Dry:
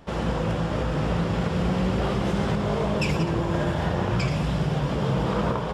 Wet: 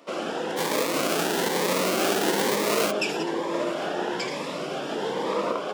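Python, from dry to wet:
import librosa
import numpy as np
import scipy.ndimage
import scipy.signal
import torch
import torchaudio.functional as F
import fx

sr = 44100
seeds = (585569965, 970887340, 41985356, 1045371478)

y = fx.halfwave_hold(x, sr, at=(0.56, 2.9), fade=0.02)
y = scipy.signal.sosfilt(scipy.signal.butter(4, 300.0, 'highpass', fs=sr, output='sos'), y)
y = fx.notch_cascade(y, sr, direction='rising', hz=1.1)
y = y * 10.0 ** (3.0 / 20.0)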